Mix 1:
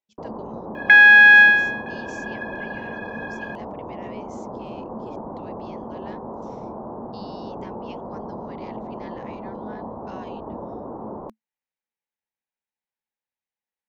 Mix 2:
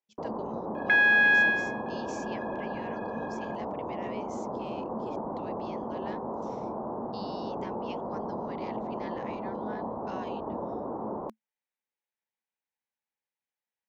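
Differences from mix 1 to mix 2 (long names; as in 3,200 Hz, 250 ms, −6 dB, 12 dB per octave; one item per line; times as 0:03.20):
second sound −11.5 dB
master: add low-shelf EQ 110 Hz −9 dB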